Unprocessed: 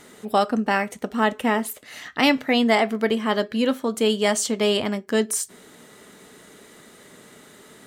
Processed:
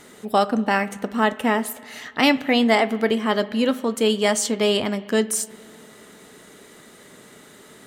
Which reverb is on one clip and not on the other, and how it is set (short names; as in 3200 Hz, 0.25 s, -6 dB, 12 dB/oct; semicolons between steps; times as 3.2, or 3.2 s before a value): spring tank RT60 2.2 s, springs 35/50 ms, chirp 25 ms, DRR 17.5 dB; gain +1 dB